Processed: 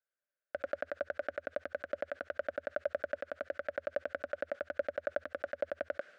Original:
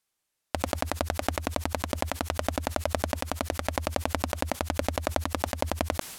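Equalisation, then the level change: two resonant band-passes 930 Hz, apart 1.4 oct; distance through air 84 m; 0.0 dB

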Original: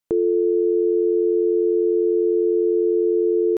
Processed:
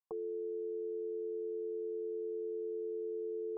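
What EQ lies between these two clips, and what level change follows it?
cascade formant filter a; static phaser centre 440 Hz, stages 8; +4.0 dB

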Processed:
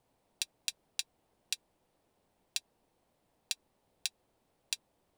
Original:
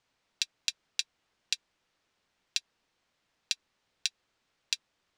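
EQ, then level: high-order bell 2.9 kHz -14 dB 2.9 oct; +8.5 dB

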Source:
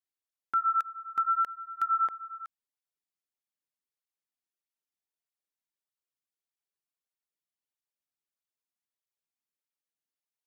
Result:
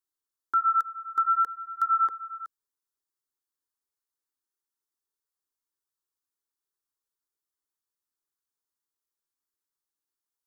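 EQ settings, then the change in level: band-stop 490 Hz, Q 12; static phaser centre 660 Hz, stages 6; +4.0 dB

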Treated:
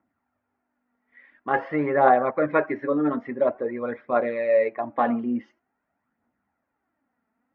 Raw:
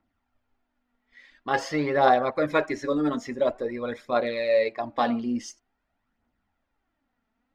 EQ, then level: high-pass 130 Hz 12 dB/octave; low-pass 2.1 kHz 24 dB/octave; +2.0 dB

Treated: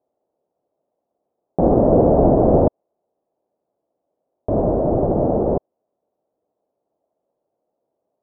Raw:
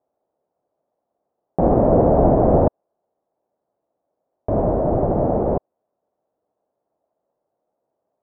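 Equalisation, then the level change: low-pass 1.8 kHz 6 dB/octave; distance through air 410 m; peaking EQ 380 Hz +4.5 dB 2 oct; -1.0 dB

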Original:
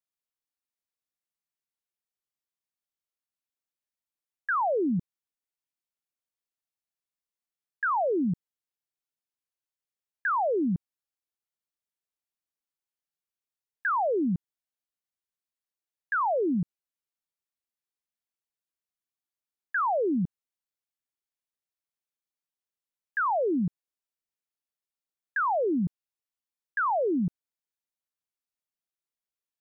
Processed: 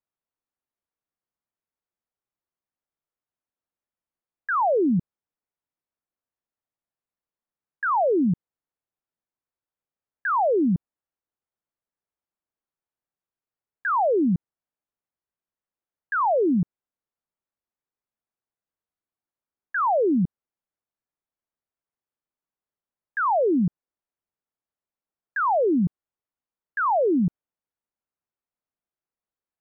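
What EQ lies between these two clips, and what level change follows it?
low-pass 1.4 kHz 12 dB/octave; +5.5 dB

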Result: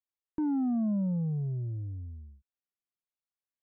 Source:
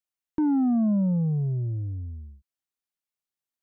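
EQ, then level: distance through air 260 m; -6.0 dB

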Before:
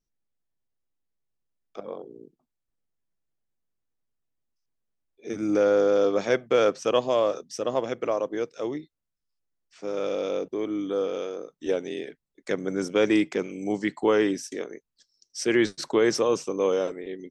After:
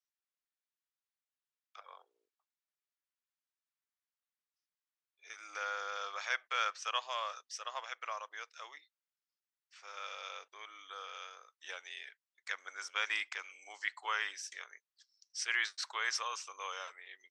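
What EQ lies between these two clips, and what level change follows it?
high-pass 1.1 kHz 24 dB/octave; distance through air 59 m; -2.0 dB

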